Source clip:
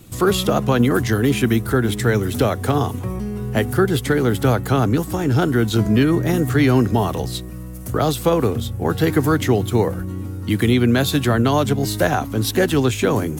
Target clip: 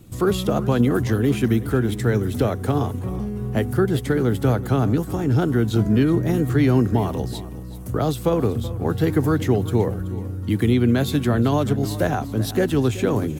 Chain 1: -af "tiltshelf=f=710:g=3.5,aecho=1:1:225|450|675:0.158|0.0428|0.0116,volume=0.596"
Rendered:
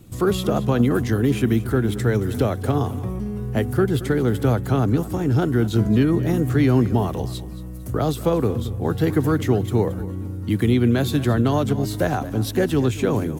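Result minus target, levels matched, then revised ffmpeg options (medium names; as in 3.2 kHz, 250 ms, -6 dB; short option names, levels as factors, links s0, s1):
echo 153 ms early
-af "tiltshelf=f=710:g=3.5,aecho=1:1:378|756|1134:0.158|0.0428|0.0116,volume=0.596"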